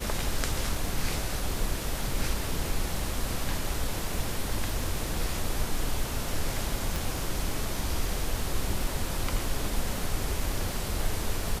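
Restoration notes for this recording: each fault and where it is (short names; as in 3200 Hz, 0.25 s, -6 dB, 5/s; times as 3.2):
crackle 15/s -33 dBFS
6.96 pop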